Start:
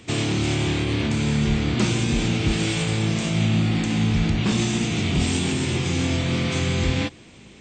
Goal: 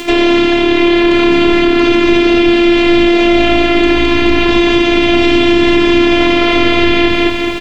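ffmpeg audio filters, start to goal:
ffmpeg -i in.wav -filter_complex "[0:a]aeval=exprs='val(0)+0.5*0.0168*sgn(val(0))':channel_layout=same,highpass=130,asplit=2[link_01][link_02];[link_02]aecho=0:1:213|426|639|852|1065|1278|1491:0.631|0.341|0.184|0.0994|0.0537|0.029|0.0156[link_03];[link_01][link_03]amix=inputs=2:normalize=0,acrossover=split=5700[link_04][link_05];[link_05]acompressor=threshold=-46dB:ratio=4:attack=1:release=60[link_06];[link_04][link_06]amix=inputs=2:normalize=0,afftfilt=real='hypot(re,im)*cos(PI*b)':imag='0':win_size=512:overlap=0.75,acrossover=split=260|3900[link_07][link_08][link_09];[link_09]acompressor=threshold=-57dB:ratio=12[link_10];[link_07][link_08][link_10]amix=inputs=3:normalize=0,alimiter=level_in=21.5dB:limit=-1dB:release=50:level=0:latency=1,volume=-1dB" out.wav

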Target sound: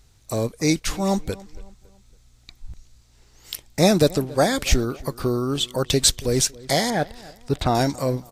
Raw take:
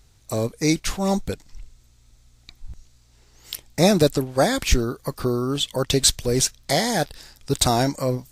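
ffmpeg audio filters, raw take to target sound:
ffmpeg -i in.wav -filter_complex "[0:a]asplit=2[link_01][link_02];[link_02]adelay=278,lowpass=frequency=2800:poles=1,volume=-21dB,asplit=2[link_03][link_04];[link_04]adelay=278,lowpass=frequency=2800:poles=1,volume=0.41,asplit=2[link_05][link_06];[link_06]adelay=278,lowpass=frequency=2800:poles=1,volume=0.41[link_07];[link_01][link_03][link_05][link_07]amix=inputs=4:normalize=0,asettb=1/sr,asplit=3[link_08][link_09][link_10];[link_08]atrim=end=6.904[link_11];[link_09]atrim=start=6.9:end=7.75,asetpts=PTS-STARTPTS,afade=type=in:duration=0.004:curve=qsin,afade=type=out:start_time=0.846:duration=0.004:curve=qsin,acrossover=split=3100[link_12][link_13];[link_13]acompressor=threshold=-44dB:ratio=4:attack=1:release=60[link_14];[link_12][link_14]amix=inputs=2:normalize=0[link_15];[link_10]atrim=start=7.746[link_16];[link_11][link_15]acrossfade=duration=0.004:curve1=hsin:curve2=qsin[link_17];[link_17][link_16]acrossfade=duration=0.004:curve1=qsin:curve2=hsin" out.wav

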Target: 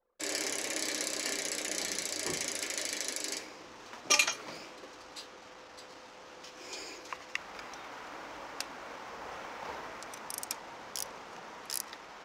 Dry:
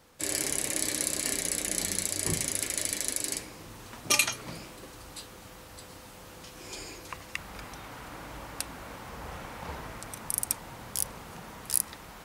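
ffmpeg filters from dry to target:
ffmpeg -i in.wav -filter_complex "[0:a]acrossover=split=280 5800:gain=0.112 1 0.0891[link_01][link_02][link_03];[link_01][link_02][link_03]amix=inputs=3:normalize=0,anlmdn=0.001,aexciter=amount=2.1:drive=4.3:freq=5400" out.wav

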